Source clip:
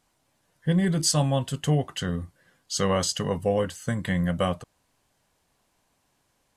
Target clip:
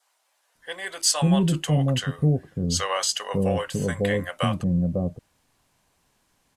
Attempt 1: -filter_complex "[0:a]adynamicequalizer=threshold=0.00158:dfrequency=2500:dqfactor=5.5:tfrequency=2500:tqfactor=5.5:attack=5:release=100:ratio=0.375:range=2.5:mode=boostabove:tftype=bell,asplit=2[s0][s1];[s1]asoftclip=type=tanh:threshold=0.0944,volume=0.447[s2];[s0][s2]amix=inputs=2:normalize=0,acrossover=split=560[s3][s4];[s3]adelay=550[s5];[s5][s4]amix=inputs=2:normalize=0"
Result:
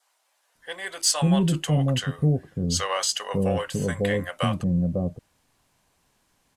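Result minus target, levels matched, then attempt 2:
saturation: distortion +9 dB
-filter_complex "[0:a]adynamicequalizer=threshold=0.00158:dfrequency=2500:dqfactor=5.5:tfrequency=2500:tqfactor=5.5:attack=5:release=100:ratio=0.375:range=2.5:mode=boostabove:tftype=bell,asplit=2[s0][s1];[s1]asoftclip=type=tanh:threshold=0.2,volume=0.447[s2];[s0][s2]amix=inputs=2:normalize=0,acrossover=split=560[s3][s4];[s3]adelay=550[s5];[s5][s4]amix=inputs=2:normalize=0"

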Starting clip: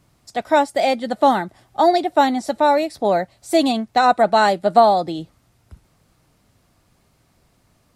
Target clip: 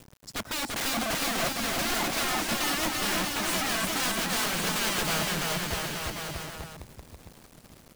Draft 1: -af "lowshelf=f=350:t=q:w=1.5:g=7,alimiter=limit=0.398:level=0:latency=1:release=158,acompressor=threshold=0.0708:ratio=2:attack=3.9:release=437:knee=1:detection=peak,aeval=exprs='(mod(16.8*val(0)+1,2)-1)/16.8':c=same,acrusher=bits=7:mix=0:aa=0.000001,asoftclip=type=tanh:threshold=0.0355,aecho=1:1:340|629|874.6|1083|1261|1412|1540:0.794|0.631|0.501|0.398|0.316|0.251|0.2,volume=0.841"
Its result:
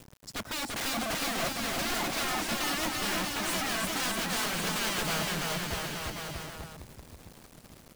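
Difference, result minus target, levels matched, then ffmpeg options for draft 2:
saturation: distortion +18 dB
-af "lowshelf=f=350:t=q:w=1.5:g=7,alimiter=limit=0.398:level=0:latency=1:release=158,acompressor=threshold=0.0708:ratio=2:attack=3.9:release=437:knee=1:detection=peak,aeval=exprs='(mod(16.8*val(0)+1,2)-1)/16.8':c=same,acrusher=bits=7:mix=0:aa=0.000001,asoftclip=type=tanh:threshold=0.126,aecho=1:1:340|629|874.6|1083|1261|1412|1540:0.794|0.631|0.501|0.398|0.316|0.251|0.2,volume=0.841"

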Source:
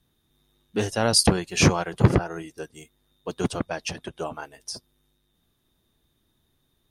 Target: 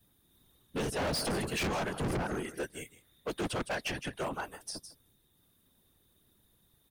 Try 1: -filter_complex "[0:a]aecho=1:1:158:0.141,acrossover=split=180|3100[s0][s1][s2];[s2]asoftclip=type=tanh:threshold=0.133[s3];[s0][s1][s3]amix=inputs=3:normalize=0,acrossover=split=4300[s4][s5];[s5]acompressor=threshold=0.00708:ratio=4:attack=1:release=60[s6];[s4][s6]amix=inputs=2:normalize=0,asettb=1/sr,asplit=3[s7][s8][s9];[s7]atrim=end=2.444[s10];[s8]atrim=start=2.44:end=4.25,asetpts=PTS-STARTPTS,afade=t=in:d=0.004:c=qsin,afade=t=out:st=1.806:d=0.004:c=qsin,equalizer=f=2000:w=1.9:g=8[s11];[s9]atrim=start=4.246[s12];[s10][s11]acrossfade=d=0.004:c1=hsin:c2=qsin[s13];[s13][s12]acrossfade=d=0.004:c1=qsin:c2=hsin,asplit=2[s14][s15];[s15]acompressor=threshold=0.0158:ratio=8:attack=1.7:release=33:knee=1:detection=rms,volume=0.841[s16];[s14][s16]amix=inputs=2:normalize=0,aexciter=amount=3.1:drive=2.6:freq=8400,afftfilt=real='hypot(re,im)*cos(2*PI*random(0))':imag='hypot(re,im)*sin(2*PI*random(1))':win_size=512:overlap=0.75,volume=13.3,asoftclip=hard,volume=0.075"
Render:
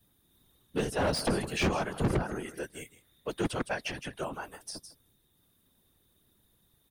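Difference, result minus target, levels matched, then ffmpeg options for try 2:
compression: peak gain reduction +9.5 dB; overload inside the chain: distortion -5 dB
-filter_complex "[0:a]aecho=1:1:158:0.141,acrossover=split=180|3100[s0][s1][s2];[s2]asoftclip=type=tanh:threshold=0.133[s3];[s0][s1][s3]amix=inputs=3:normalize=0,acrossover=split=4300[s4][s5];[s5]acompressor=threshold=0.00708:ratio=4:attack=1:release=60[s6];[s4][s6]amix=inputs=2:normalize=0,asettb=1/sr,asplit=3[s7][s8][s9];[s7]atrim=end=2.444[s10];[s8]atrim=start=2.44:end=4.25,asetpts=PTS-STARTPTS,afade=t=in:d=0.004:c=qsin,afade=t=out:st=1.806:d=0.004:c=qsin,equalizer=f=2000:w=1.9:g=8[s11];[s9]atrim=start=4.246[s12];[s10][s11]acrossfade=d=0.004:c1=hsin:c2=qsin[s13];[s13][s12]acrossfade=d=0.004:c1=qsin:c2=hsin,asplit=2[s14][s15];[s15]acompressor=threshold=0.0562:ratio=8:attack=1.7:release=33:knee=1:detection=rms,volume=0.841[s16];[s14][s16]amix=inputs=2:normalize=0,aexciter=amount=3.1:drive=2.6:freq=8400,afftfilt=real='hypot(re,im)*cos(2*PI*random(0))':imag='hypot(re,im)*sin(2*PI*random(1))':win_size=512:overlap=0.75,volume=31.6,asoftclip=hard,volume=0.0316"

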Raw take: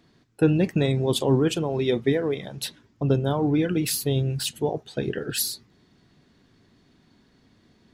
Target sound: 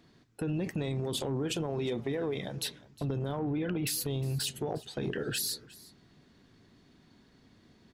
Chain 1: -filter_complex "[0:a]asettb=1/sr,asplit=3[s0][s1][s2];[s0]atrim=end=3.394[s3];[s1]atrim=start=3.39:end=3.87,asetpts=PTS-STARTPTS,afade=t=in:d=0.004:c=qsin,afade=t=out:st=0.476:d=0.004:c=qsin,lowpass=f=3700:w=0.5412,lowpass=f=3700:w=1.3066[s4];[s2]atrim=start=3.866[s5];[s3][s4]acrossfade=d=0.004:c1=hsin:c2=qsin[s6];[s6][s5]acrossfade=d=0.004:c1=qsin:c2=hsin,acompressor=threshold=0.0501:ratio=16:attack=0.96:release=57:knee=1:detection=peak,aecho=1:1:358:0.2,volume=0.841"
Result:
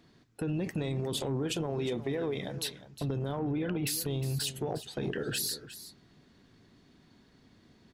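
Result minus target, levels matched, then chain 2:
echo-to-direct +6.5 dB
-filter_complex "[0:a]asettb=1/sr,asplit=3[s0][s1][s2];[s0]atrim=end=3.394[s3];[s1]atrim=start=3.39:end=3.87,asetpts=PTS-STARTPTS,afade=t=in:d=0.004:c=qsin,afade=t=out:st=0.476:d=0.004:c=qsin,lowpass=f=3700:w=0.5412,lowpass=f=3700:w=1.3066[s4];[s2]atrim=start=3.866[s5];[s3][s4]acrossfade=d=0.004:c1=hsin:c2=qsin[s6];[s6][s5]acrossfade=d=0.004:c1=qsin:c2=hsin,acompressor=threshold=0.0501:ratio=16:attack=0.96:release=57:knee=1:detection=peak,aecho=1:1:358:0.0944,volume=0.841"

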